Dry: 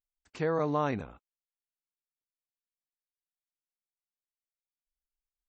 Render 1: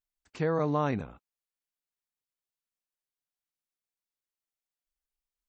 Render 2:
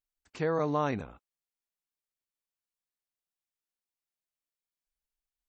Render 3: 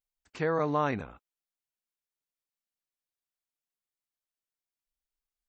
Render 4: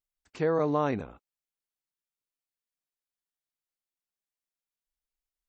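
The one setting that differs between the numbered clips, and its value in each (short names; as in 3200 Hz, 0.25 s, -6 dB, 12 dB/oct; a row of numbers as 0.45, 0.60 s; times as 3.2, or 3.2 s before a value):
dynamic EQ, frequency: 150, 7900, 1700, 390 Hz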